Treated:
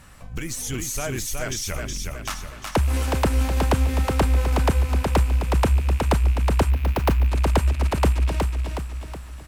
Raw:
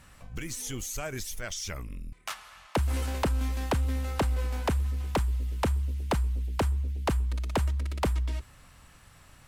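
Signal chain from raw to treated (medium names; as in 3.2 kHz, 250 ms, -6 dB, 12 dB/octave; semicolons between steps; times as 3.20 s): rattle on loud lows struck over -35 dBFS, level -35 dBFS; peaking EQ 3 kHz -2 dB 1.6 oct; feedback delay 368 ms, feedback 48%, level -4 dB; 6.70–7.28 s: careless resampling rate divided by 3×, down filtered, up hold; trim +6.5 dB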